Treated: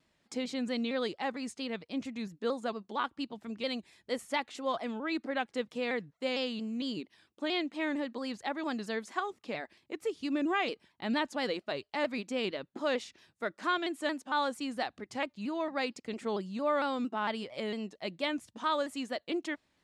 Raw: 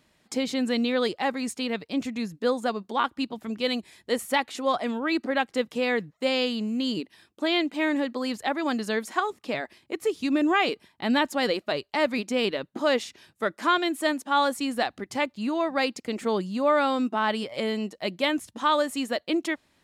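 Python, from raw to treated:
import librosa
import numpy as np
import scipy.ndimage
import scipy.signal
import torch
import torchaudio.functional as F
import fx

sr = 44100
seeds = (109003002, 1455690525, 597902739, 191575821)

y = scipy.signal.sosfilt(scipy.signal.butter(2, 8400.0, 'lowpass', fs=sr, output='sos'), x)
y = fx.vibrato_shape(y, sr, shape='saw_down', rate_hz=4.4, depth_cents=100.0)
y = y * librosa.db_to_amplitude(-8.0)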